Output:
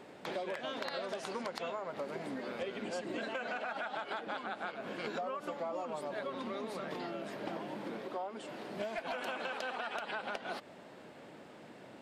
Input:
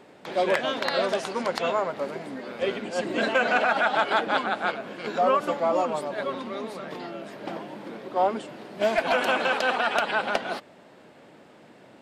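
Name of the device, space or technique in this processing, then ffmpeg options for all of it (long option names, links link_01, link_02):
serial compression, peaks first: -filter_complex "[0:a]acompressor=threshold=-30dB:ratio=6,acompressor=threshold=-37dB:ratio=2,asettb=1/sr,asplit=3[link_01][link_02][link_03];[link_01]atrim=end=8.024[link_04];[link_02]atrim=start=8.02:end=8.67,asetpts=PTS-STARTPTS,afade=type=in:duration=0.004:curve=qsin,afade=type=out:start_time=0.646:duration=0.004:curve=qsin,lowshelf=frequency=190:gain=-8[link_05];[link_03]atrim=start=8.666[link_06];[link_04][link_05]acrossfade=duration=0.004:curve1=hsin:curve2=qsin[link_07];[link_07][link_06]acrossfade=duration=0.004:curve1=qsin:curve2=hsin,volume=-1.5dB"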